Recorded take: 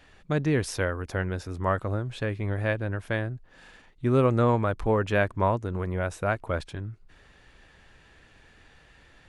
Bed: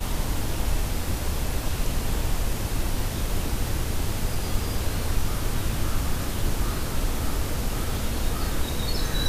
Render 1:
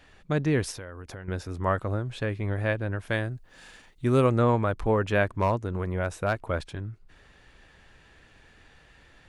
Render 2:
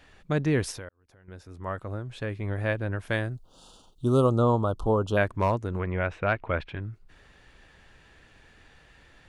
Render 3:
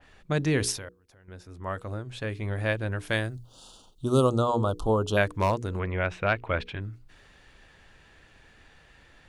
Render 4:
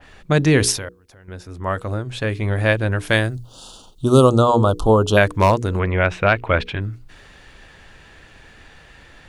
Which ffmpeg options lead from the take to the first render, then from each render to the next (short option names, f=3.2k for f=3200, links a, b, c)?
-filter_complex "[0:a]asettb=1/sr,asplit=3[a][b][c];[a]atrim=end=0.714[d];[b]atrim=start=0.71:end=1.28,asetpts=PTS-STARTPTS,afade=t=in:d=0.004:c=qsin,afade=t=out:st=0.566:d=0.004:c=qsin,acompressor=threshold=-37dB:ratio=5:attack=3.2:release=140:knee=1:detection=peak[e];[c]atrim=start=1.276[f];[d][e]acrossfade=d=0.004:c1=hsin:c2=qsin[g];[g][f]acrossfade=d=0.004:c1=qsin:c2=hsin,asettb=1/sr,asplit=3[h][i][j];[h]atrim=end=3.094[k];[i]atrim=start=3.09:end=4.3,asetpts=PTS-STARTPTS,afade=t=in:d=0.004:c=qsin,afade=t=out:st=1.206:d=0.004:c=qsin,highshelf=f=4.4k:g=11[l];[j]atrim=start=4.296[m];[k][l]acrossfade=d=0.004:c1=hsin:c2=qsin[n];[n][m]acrossfade=d=0.004:c1=qsin:c2=hsin,asettb=1/sr,asplit=3[o][p][q];[o]atrim=end=5.414[r];[p]atrim=start=5.41:end=6.48,asetpts=PTS-STARTPTS,afade=t=in:d=0.004:c=qsin,afade=t=out:st=1.066:d=0.004:c=qsin,asoftclip=type=hard:threshold=-17dB[s];[q]atrim=start=6.476[t];[r][s]acrossfade=d=0.004:c1=hsin:c2=qsin[u];[u][t]acrossfade=d=0.004:c1=qsin:c2=hsin"
-filter_complex "[0:a]asettb=1/sr,asplit=3[a][b][c];[a]atrim=end=3.354[d];[b]atrim=start=3.35:end=5.17,asetpts=PTS-STARTPTS,afade=t=in:d=0.004:c=qsin,afade=t=out:st=1.816:d=0.004:c=qsin,asuperstop=centerf=2000:order=8:qfactor=1.2[e];[c]atrim=start=5.166[f];[d][e]acrossfade=d=0.004:c1=hsin:c2=qsin[g];[g][f]acrossfade=d=0.004:c1=qsin:c2=hsin,asettb=1/sr,asplit=3[h][i][j];[h]atrim=end=5.794[k];[i]atrim=start=5.79:end=6.81,asetpts=PTS-STARTPTS,afade=t=in:d=0.004:c=qsin,afade=t=out:st=1.016:d=0.004:c=qsin,lowpass=f=2.5k:t=q:w=2.1[l];[j]atrim=start=6.806[m];[k][l]acrossfade=d=0.004:c1=hsin:c2=qsin[n];[n][m]acrossfade=d=0.004:c1=qsin:c2=hsin,asplit=2[o][p];[o]atrim=end=0.89,asetpts=PTS-STARTPTS,afade=t=out:st=0.886:d=0.004:c=hsin[q];[p]atrim=start=0.89,asetpts=PTS-STARTPTS,afade=t=in:d=1.96[r];[q][r]concat=n=2:v=0:a=1"
-af "bandreject=f=60:t=h:w=6,bandreject=f=120:t=h:w=6,bandreject=f=180:t=h:w=6,bandreject=f=240:t=h:w=6,bandreject=f=300:t=h:w=6,bandreject=f=360:t=h:w=6,bandreject=f=420:t=h:w=6,bandreject=f=480:t=h:w=6,adynamicequalizer=threshold=0.00501:dfrequency=2600:dqfactor=0.7:tfrequency=2600:tqfactor=0.7:attack=5:release=100:ratio=0.375:range=4:mode=boostabove:tftype=highshelf"
-af "volume=10dB,alimiter=limit=-2dB:level=0:latency=1"